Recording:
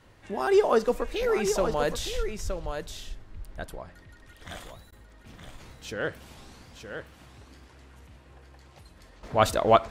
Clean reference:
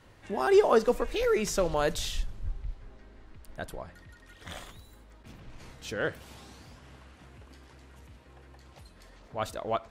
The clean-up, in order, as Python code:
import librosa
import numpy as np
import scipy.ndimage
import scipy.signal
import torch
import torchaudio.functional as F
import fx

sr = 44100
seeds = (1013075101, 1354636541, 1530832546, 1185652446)

y = fx.fix_interpolate(x, sr, at_s=(4.91,), length_ms=12.0)
y = fx.fix_echo_inverse(y, sr, delay_ms=919, level_db=-7.5)
y = fx.gain(y, sr, db=fx.steps((0.0, 0.0), (9.23, -11.5)))